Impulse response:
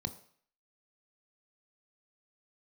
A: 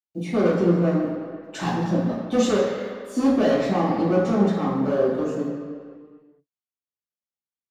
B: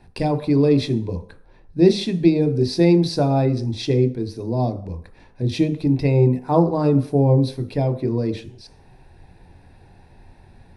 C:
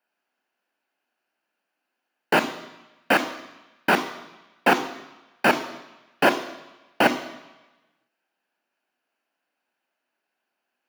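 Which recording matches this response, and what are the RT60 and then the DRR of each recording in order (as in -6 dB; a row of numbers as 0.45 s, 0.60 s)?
B; 2.0 s, 0.55 s, 1.1 s; -9.0 dB, 9.0 dB, 9.5 dB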